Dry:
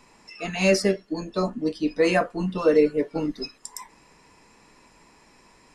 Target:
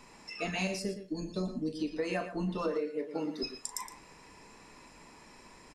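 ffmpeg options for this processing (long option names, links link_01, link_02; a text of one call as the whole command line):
ffmpeg -i in.wav -filter_complex "[0:a]asettb=1/sr,asplit=3[link_01][link_02][link_03];[link_01]atrim=end=0.674[link_04];[link_02]atrim=start=0.67:end=1.79,asetpts=PTS-STARTPTS,afade=type=in:duration=0.004:curve=qsin,afade=type=out:start_time=1.116:duration=0.004:curve=qsin,equalizer=frequency=1200:width_type=o:width=2.9:gain=-14[link_05];[link_03]atrim=start=1.786[link_06];[link_04][link_05]acrossfade=duration=0.004:curve1=hsin:curve2=qsin[link_07];[link_07][link_06]acrossfade=duration=0.004:curve1=qsin:curve2=hsin,asettb=1/sr,asplit=3[link_08][link_09][link_10];[link_08]atrim=end=2.684[link_11];[link_09]atrim=start=2.68:end=3.43,asetpts=PTS-STARTPTS,afade=type=in:duration=0.004:curve=qsin,afade=type=out:start_time=0.746:duration=0.004:curve=qsin,highpass=240[link_12];[link_10]atrim=start=3.426[link_13];[link_11][link_12]acrossfade=duration=0.004:curve1=hsin:curve2=qsin[link_14];[link_14][link_13]acrossfade=duration=0.004:curve1=qsin:curve2=hsin,acompressor=threshold=-31dB:ratio=8,asplit=2[link_15][link_16];[link_16]adelay=38,volume=-12dB[link_17];[link_15][link_17]amix=inputs=2:normalize=0,asplit=2[link_18][link_19];[link_19]adelay=116.6,volume=-10dB,highshelf=frequency=4000:gain=-2.62[link_20];[link_18][link_20]amix=inputs=2:normalize=0" out.wav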